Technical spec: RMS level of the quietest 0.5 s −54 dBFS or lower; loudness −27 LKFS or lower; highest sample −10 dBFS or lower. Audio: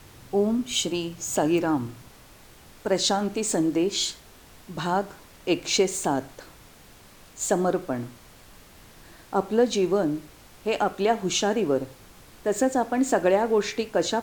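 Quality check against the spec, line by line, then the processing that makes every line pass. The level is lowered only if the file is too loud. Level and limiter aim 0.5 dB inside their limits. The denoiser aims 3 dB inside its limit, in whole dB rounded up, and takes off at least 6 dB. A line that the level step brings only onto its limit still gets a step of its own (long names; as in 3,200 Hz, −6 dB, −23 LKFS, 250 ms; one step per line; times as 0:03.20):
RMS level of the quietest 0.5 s −50 dBFS: out of spec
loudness −25.5 LKFS: out of spec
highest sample −8.5 dBFS: out of spec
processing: broadband denoise 6 dB, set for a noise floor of −50 dBFS
level −2 dB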